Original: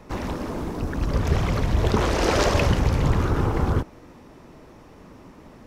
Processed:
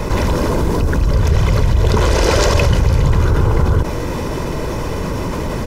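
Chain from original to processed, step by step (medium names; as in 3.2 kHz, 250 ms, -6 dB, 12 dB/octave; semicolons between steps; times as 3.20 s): tone controls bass +4 dB, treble +4 dB; comb 2 ms, depth 41%; level flattener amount 70%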